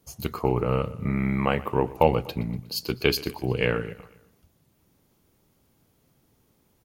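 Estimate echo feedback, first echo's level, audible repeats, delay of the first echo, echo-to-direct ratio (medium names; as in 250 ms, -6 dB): 53%, -19.5 dB, 3, 121 ms, -18.0 dB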